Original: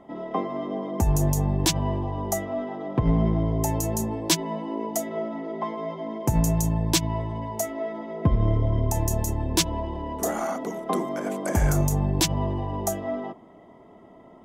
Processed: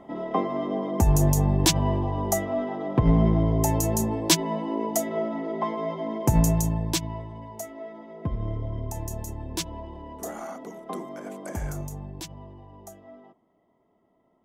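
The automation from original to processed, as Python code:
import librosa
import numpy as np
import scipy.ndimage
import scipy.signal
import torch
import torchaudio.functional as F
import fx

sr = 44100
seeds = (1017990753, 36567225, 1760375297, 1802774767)

y = fx.gain(x, sr, db=fx.line((6.41, 2.0), (7.3, -8.5), (11.46, -8.5), (12.45, -18.0)))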